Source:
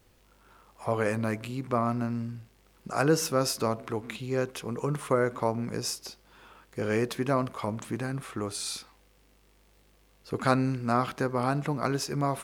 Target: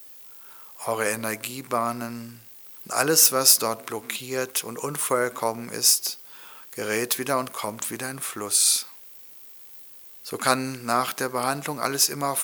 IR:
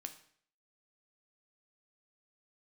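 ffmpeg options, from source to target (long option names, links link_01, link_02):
-af "aemphasis=mode=production:type=riaa,volume=4dB"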